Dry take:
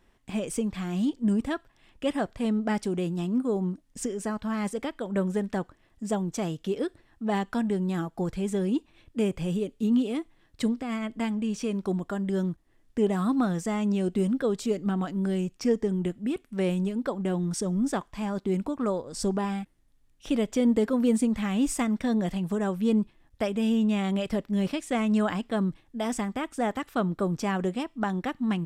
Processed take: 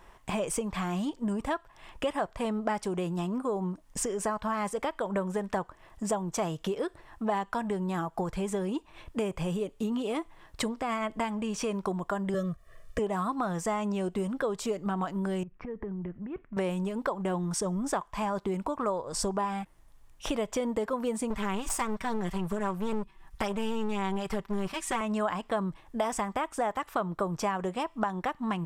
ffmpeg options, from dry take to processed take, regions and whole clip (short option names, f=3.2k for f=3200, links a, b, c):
-filter_complex "[0:a]asettb=1/sr,asplit=3[a][b][c];[a]atrim=end=12.344[d];[b]atrim=start=12.34:end=12.99,asetpts=PTS-STARTPTS,afade=t=in:d=0.004:c=qsin,afade=t=out:st=0.646:d=0.004:c=qsin,asuperstop=centerf=870:order=12:qfactor=2.4,aecho=1:1:1.7:0.96,atrim=end_sample=28665[e];[c]atrim=start=12.986[f];[d][e]acrossfade=d=0.004:c1=hsin:c2=qsin[g];[g][f]acrossfade=d=0.004:c1=qsin:c2=hsin,asettb=1/sr,asplit=3[h][i][j];[h]atrim=end=15.434[k];[i]atrim=start=15.43:end=16.57,asetpts=PTS-STARTPTS,afade=t=in:d=0.004:c=qsin,afade=t=out:st=1.136:d=0.004:c=qsin,lowpass=f=1.9k:w=0.5412,lowpass=f=1.9k:w=1.3066,equalizer=f=830:w=0.67:g=-12,acompressor=threshold=-38dB:ratio=12:attack=3.2:release=140:knee=1:detection=peak[l];[j]atrim=start=16.566[m];[k][l]acrossfade=d=0.004:c1=hsin:c2=qsin[n];[n][m]acrossfade=d=0.004:c1=qsin:c2=hsin,asettb=1/sr,asplit=3[o][p][q];[o]atrim=end=21.304[r];[p]atrim=start=21.3:end=25.01,asetpts=PTS-STARTPTS,afade=t=in:d=0.004:c=qsin,afade=t=out:st=3.706:d=0.004:c=qsin,equalizer=f=570:w=3:g=-13.5,aecho=1:1:5.2:0.84,atrim=end_sample=163611,aeval=exprs='clip(val(0),-1,0.0299)':c=same[s];[q]atrim=start=25.006[t];[r][s]acrossfade=d=0.004:c1=hsin:c2=qsin[u];[u][t]acrossfade=d=0.004:c1=qsin:c2=hsin,equalizer=f=100:t=o:w=0.67:g=-4,equalizer=f=250:t=o:w=0.67:g=-9,equalizer=f=1k:t=o:w=0.67:g=9,equalizer=f=4k:t=o:w=0.67:g=-3,acompressor=threshold=-39dB:ratio=4,equalizer=f=630:t=o:w=0.22:g=3.5,volume=9dB"